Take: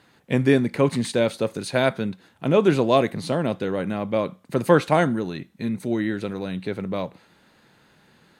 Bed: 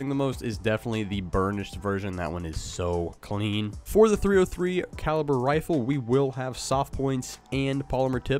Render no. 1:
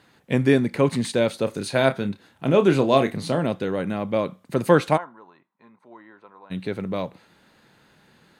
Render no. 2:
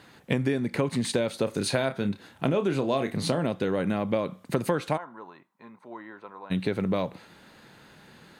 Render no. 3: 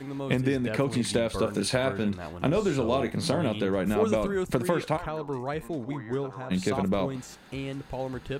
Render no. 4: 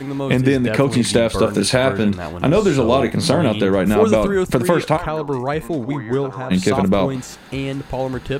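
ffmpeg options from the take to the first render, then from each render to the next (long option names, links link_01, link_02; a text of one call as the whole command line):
ffmpeg -i in.wav -filter_complex "[0:a]asettb=1/sr,asplit=3[link_01][link_02][link_03];[link_01]atrim=end=1.444[link_04];[link_02]atrim=start=1.44:end=3.45,asetpts=PTS-STARTPTS,afade=type=in:duration=0.004:curve=qsin,afade=type=out:start_time=2.006:duration=0.004:curve=qsin,asplit=2[link_05][link_06];[link_06]adelay=30,volume=-9.5dB[link_07];[link_05][link_07]amix=inputs=2:normalize=0,atrim=end_sample=88641[link_08];[link_03]atrim=start=3.446[link_09];[link_04][link_08]acrossfade=duration=0.004:curve1=hsin:curve2=qsin[link_10];[link_10][link_09]acrossfade=duration=0.004:curve1=qsin:curve2=hsin,asplit=3[link_11][link_12][link_13];[link_11]afade=type=out:start_time=4.96:duration=0.02[link_14];[link_12]bandpass=frequency=1000:width_type=q:width=6.1,afade=type=in:start_time=4.96:duration=0.02,afade=type=out:start_time=6.5:duration=0.02[link_15];[link_13]afade=type=in:start_time=6.5:duration=0.02[link_16];[link_14][link_15][link_16]amix=inputs=3:normalize=0" out.wav
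ffmpeg -i in.wav -filter_complex "[0:a]asplit=2[link_01][link_02];[link_02]alimiter=limit=-10dB:level=0:latency=1,volume=-3dB[link_03];[link_01][link_03]amix=inputs=2:normalize=0,acompressor=threshold=-22dB:ratio=10" out.wav
ffmpeg -i in.wav -i bed.wav -filter_complex "[1:a]volume=-8dB[link_01];[0:a][link_01]amix=inputs=2:normalize=0" out.wav
ffmpeg -i in.wav -af "volume=10.5dB,alimiter=limit=-1dB:level=0:latency=1" out.wav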